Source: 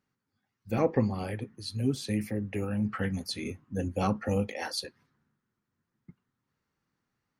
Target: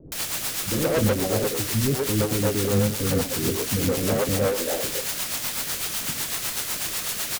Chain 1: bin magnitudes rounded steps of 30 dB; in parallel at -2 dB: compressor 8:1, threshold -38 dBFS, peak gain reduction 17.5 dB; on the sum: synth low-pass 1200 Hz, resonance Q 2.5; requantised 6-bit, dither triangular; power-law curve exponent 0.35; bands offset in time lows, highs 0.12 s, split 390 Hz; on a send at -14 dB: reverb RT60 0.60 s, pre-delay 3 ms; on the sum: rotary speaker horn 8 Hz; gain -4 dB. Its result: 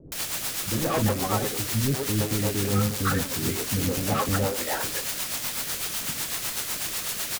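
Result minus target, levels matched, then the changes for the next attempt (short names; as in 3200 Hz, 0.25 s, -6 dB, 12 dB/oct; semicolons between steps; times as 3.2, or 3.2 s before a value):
1000 Hz band +4.5 dB
change: synth low-pass 530 Hz, resonance Q 2.5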